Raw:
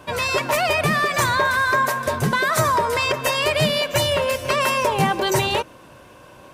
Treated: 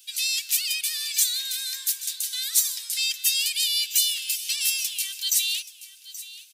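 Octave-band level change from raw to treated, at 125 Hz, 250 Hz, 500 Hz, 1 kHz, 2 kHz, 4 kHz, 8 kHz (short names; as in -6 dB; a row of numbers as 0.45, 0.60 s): under -40 dB, under -40 dB, under -40 dB, under -40 dB, -13.5 dB, +1.0 dB, +7.0 dB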